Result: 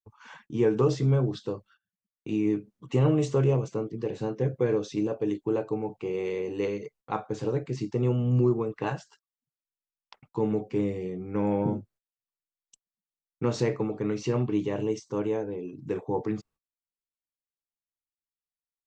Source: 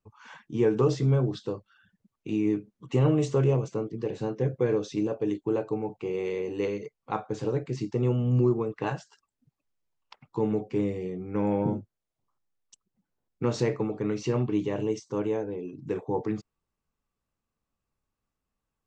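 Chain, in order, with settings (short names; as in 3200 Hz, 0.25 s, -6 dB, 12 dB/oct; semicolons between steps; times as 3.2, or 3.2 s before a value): gate -55 dBFS, range -27 dB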